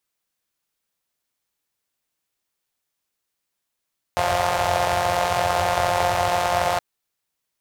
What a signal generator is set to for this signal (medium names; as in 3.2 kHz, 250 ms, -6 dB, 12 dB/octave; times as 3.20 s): four-cylinder engine model, steady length 2.62 s, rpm 5300, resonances 93/680 Hz